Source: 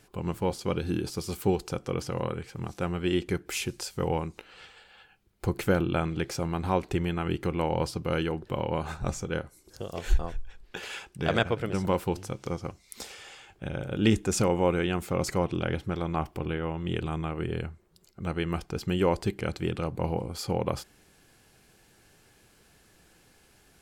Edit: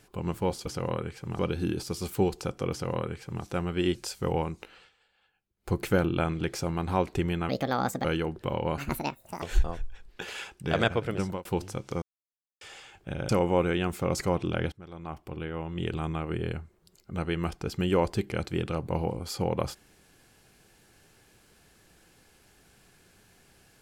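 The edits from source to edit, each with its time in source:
1.98–2.71 copy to 0.66
3.22–3.71 cut
4.48–5.49 dip -15 dB, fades 0.17 s
7.25–8.11 speed 154%
8.84–9.97 speed 176%
11.75–12 fade out
12.57–13.16 mute
13.84–14.38 cut
15.81–17.11 fade in, from -21 dB

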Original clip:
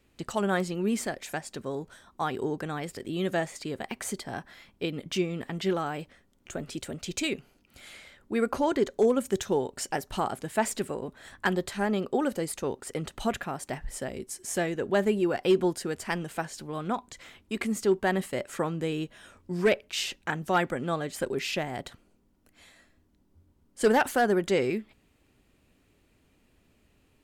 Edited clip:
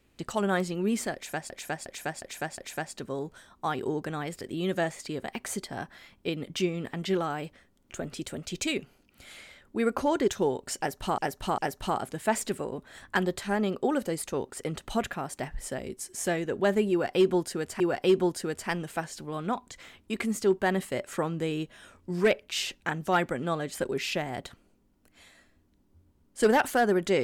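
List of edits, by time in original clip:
1.14–1.5 loop, 5 plays
8.84–9.38 cut
9.88–10.28 loop, 3 plays
15.21–16.1 loop, 2 plays

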